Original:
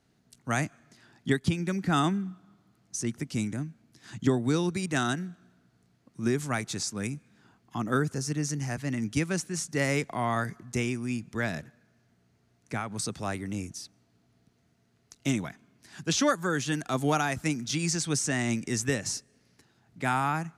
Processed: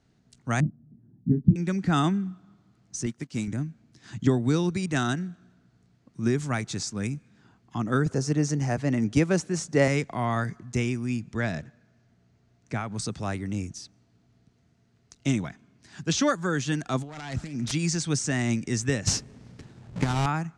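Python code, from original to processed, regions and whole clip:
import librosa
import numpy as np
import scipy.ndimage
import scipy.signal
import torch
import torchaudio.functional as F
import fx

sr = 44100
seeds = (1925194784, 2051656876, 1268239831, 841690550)

y = fx.chain(x, sr, fx.lowpass_res(hz=220.0, q=1.8),
    fx.doubler(ms=27.0, db=-7.0), at=(0.6, 1.56))
y = fx.chain(y, sr, fx.block_float(bits=5),
    fx.highpass(hz=170.0, slope=6),
    fx.upward_expand(threshold_db=-53.0, expansion=1.5), at=(3.06, 3.48))
y = fx.chain(y, sr, fx.highpass(hz=51.0, slope=12),
    fx.peak_eq(hz=570.0, db=9.0, octaves=1.9), at=(8.06, 9.88))
y = fx.chain(y, sr, fx.lowpass(hz=9200.0, slope=12),
    fx.peak_eq(hz=650.0, db=3.0, octaves=0.21), at=(11.34, 12.86))
y = fx.chain(y, sr, fx.self_delay(depth_ms=0.24),
    fx.lowpass(hz=8400.0, slope=12),
    fx.over_compress(threshold_db=-37.0, ratio=-1.0), at=(17.02, 17.72))
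y = fx.chain(y, sr, fx.halfwave_hold(),
    fx.low_shelf(hz=410.0, db=5.5),
    fx.over_compress(threshold_db=-24.0, ratio=-0.5), at=(19.07, 20.26))
y = scipy.signal.sosfilt(scipy.signal.butter(4, 8400.0, 'lowpass', fs=sr, output='sos'), y)
y = fx.low_shelf(y, sr, hz=180.0, db=7.0)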